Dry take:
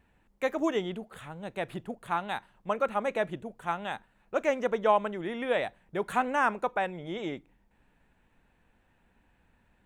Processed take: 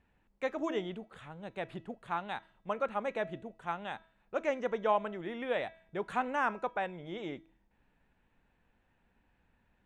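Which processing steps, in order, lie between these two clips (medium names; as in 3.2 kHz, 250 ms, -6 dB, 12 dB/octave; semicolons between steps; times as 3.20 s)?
low-pass 6.1 kHz 12 dB/octave; de-hum 325.7 Hz, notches 19; trim -5 dB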